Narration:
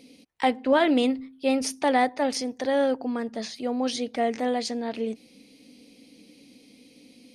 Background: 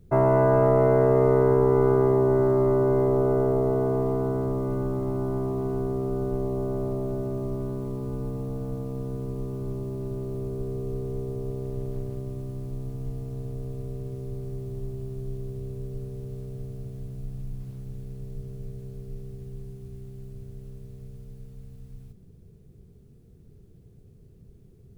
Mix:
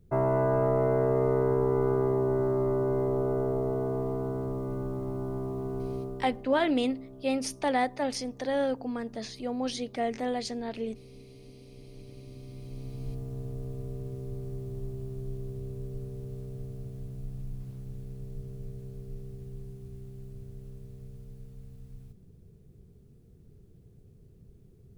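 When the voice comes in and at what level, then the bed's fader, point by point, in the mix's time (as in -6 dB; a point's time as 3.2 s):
5.80 s, -5.0 dB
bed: 5.97 s -6 dB
6.49 s -19.5 dB
11.67 s -19.5 dB
13.11 s -3 dB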